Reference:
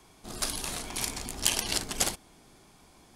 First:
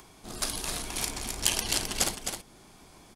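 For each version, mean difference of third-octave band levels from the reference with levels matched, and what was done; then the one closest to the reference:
3.0 dB: upward compression, threshold −48 dBFS
single-tap delay 262 ms −6.5 dB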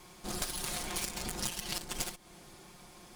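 6.5 dB: lower of the sound and its delayed copy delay 5.6 ms
downward compressor 16 to 1, threshold −37 dBFS, peak gain reduction 17 dB
level +5 dB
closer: first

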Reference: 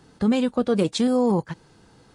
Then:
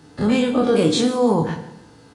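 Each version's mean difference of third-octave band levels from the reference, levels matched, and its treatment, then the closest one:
5.5 dB: every bin's largest magnitude spread in time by 60 ms
high-pass filter 45 Hz
repeating echo 149 ms, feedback 40%, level −18.5 dB
feedback delay network reverb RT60 0.67 s, low-frequency decay 1.2×, high-frequency decay 0.85×, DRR 4.5 dB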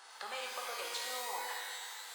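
21.0 dB: high-pass filter 770 Hz 24 dB per octave
downward compressor 4 to 1, threshold −49 dBFS, peak gain reduction 20 dB
reverb with rising layers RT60 1.7 s, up +12 semitones, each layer −2 dB, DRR −1.5 dB
level +4 dB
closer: first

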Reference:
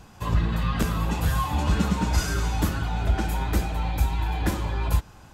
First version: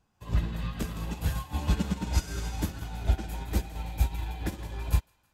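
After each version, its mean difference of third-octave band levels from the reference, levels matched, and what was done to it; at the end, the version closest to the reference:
4.0 dB: in parallel at −1 dB: brickwall limiter −17.5 dBFS, peak gain reduction 7 dB
on the sum: feedback echo with a high-pass in the loop 164 ms, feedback 61%, high-pass 980 Hz, level −7 dB
dynamic equaliser 1,200 Hz, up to −6 dB, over −42 dBFS, Q 1.6
expander for the loud parts 2.5 to 1, over −30 dBFS
level −4 dB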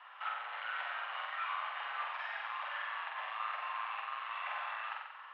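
21.0 dB: downward compressor, threshold −26 dBFS, peak gain reduction 10 dB
gain into a clipping stage and back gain 31.5 dB
flutter between parallel walls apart 7.9 metres, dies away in 0.95 s
single-sideband voice off tune +270 Hz 530–2,800 Hz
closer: first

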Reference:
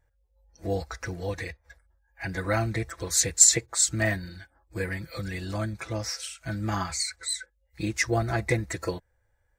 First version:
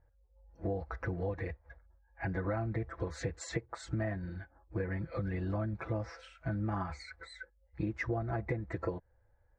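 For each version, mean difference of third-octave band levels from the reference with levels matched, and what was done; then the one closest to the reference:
8.5 dB: low-pass filter 1,200 Hz 12 dB per octave
downward compressor 10 to 1, threshold −33 dBFS, peak gain reduction 13.5 dB
level +2 dB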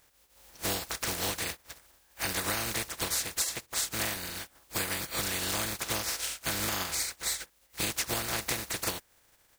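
14.5 dB: compressing power law on the bin magnitudes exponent 0.25
downward compressor 16 to 1, threshold −33 dBFS, peak gain reduction 21.5 dB
level +5 dB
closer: first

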